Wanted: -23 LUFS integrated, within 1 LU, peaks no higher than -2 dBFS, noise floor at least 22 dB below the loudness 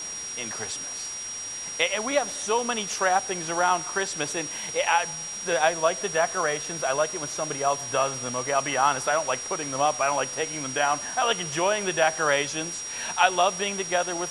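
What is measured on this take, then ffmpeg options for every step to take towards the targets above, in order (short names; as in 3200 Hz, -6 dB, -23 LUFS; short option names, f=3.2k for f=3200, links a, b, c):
steady tone 5700 Hz; tone level -33 dBFS; noise floor -35 dBFS; noise floor target -48 dBFS; loudness -25.5 LUFS; peak -5.5 dBFS; loudness target -23.0 LUFS
-> -af "bandreject=f=5.7k:w=30"
-af "afftdn=nr=13:nf=-35"
-af "volume=2.5dB"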